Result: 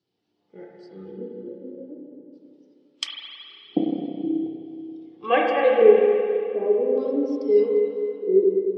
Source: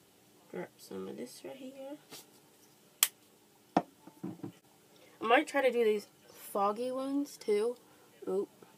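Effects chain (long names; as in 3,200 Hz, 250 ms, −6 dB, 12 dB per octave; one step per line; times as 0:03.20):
auto-filter low-pass square 0.43 Hz 400–4,800 Hz
spring reverb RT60 3.9 s, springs 31/53 ms, chirp 50 ms, DRR −4 dB
every bin expanded away from the loudest bin 1.5 to 1
level +3.5 dB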